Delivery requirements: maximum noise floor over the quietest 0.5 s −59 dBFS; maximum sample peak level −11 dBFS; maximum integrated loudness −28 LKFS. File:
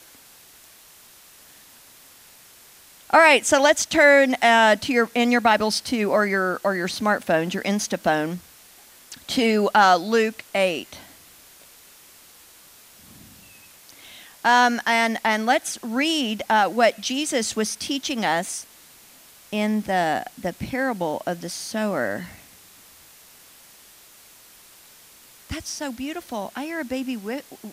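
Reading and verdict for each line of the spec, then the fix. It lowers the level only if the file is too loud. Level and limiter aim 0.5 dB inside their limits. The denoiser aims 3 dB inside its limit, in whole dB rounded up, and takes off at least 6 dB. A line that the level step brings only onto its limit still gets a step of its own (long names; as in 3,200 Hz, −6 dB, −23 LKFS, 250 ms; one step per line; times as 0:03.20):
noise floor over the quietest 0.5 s −50 dBFS: out of spec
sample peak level −4.5 dBFS: out of spec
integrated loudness −21.0 LKFS: out of spec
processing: broadband denoise 6 dB, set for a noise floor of −50 dBFS
level −7.5 dB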